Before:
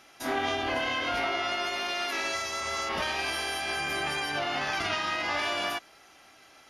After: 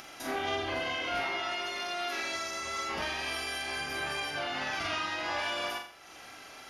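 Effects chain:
upward compression, threshold −34 dBFS
on a send: flutter between parallel walls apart 7.3 metres, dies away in 0.49 s
on the sum: level −5 dB

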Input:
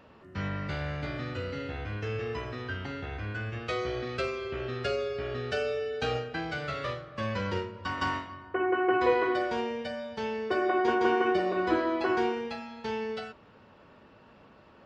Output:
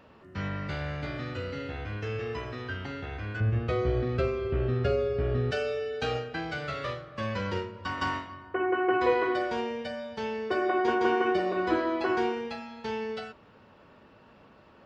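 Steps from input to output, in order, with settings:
0:03.40–0:05.51: spectral tilt −3.5 dB per octave

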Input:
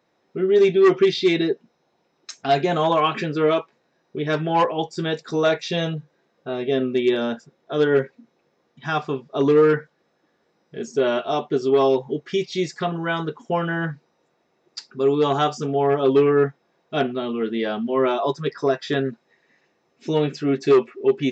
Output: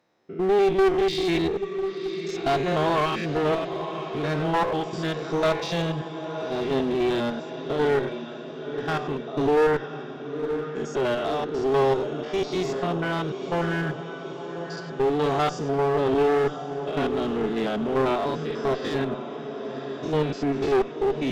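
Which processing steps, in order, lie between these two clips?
spectrum averaged block by block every 100 ms
feedback delay with all-pass diffusion 994 ms, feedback 60%, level −11 dB
asymmetric clip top −25 dBFS

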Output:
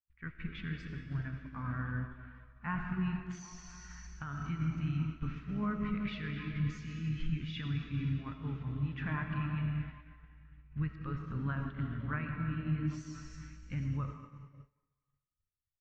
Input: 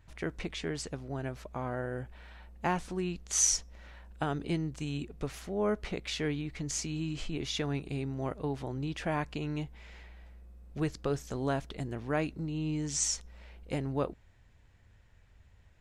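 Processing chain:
flat-topped bell 510 Hz −14 dB
in parallel at +2 dB: downward compressor 16 to 1, threshold −46 dBFS, peak gain reduction 24.5 dB
on the sum: comb and all-pass reverb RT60 3.9 s, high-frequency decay 1×, pre-delay 35 ms, DRR 0.5 dB
brickwall limiter −24 dBFS, peak gain reduction 11 dB
pitch-shifted copies added −5 semitones −15 dB, −4 semitones −18 dB
on a send: echo through a band-pass that steps 261 ms, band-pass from 320 Hz, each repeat 0.7 octaves, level −5.5 dB
on the sum: downward expander −32 dBFS
low-pass filter 2,200 Hz 12 dB per octave
tilt shelving filter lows −4 dB, about 1,200 Hz
every bin expanded away from the loudest bin 1.5 to 1

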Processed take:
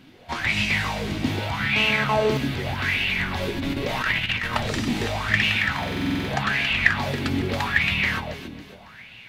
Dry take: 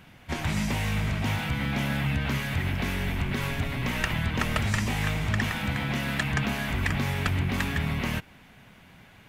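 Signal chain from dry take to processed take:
delay that swaps between a low-pass and a high-pass 138 ms, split 880 Hz, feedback 62%, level −2 dB
0:03.56–0:04.53: compressor whose output falls as the input rises −27 dBFS, ratio −0.5
0:06.43–0:06.98: high-shelf EQ 11,000 Hz −7.5 dB
flanger 0.42 Hz, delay 7.7 ms, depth 3.7 ms, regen +68%
parametric band 4,200 Hz +10 dB 1 octave
0:01.76–0:02.37: phone interference −31 dBFS
buffer that repeats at 0:05.78, samples 2,048, times 10
auto-filter bell 0.82 Hz 280–2,700 Hz +18 dB

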